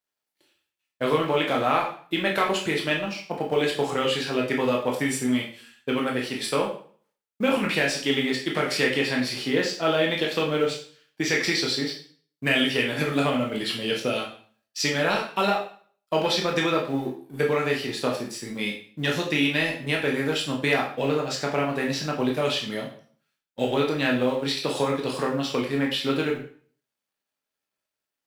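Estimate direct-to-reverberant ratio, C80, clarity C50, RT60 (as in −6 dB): −1.5 dB, 11.0 dB, 7.0 dB, 0.45 s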